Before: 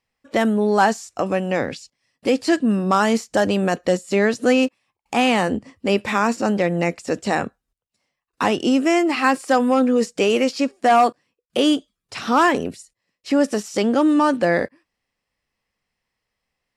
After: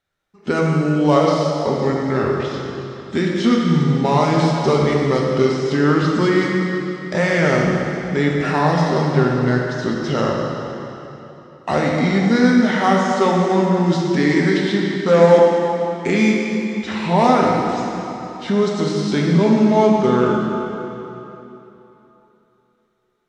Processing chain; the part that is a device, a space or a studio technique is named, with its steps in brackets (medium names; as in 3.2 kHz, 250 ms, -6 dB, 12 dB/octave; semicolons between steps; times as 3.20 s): slowed and reverbed (tape speed -28%; reverberation RT60 3.2 s, pre-delay 3 ms, DRR -2.5 dB); trim -1 dB